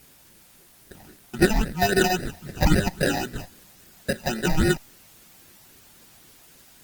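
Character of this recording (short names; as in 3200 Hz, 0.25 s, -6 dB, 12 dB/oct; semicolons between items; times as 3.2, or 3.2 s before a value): aliases and images of a low sample rate 1100 Hz, jitter 0%; phasing stages 8, 3.7 Hz, lowest notch 400–1000 Hz; a quantiser's noise floor 10-bit, dither triangular; Opus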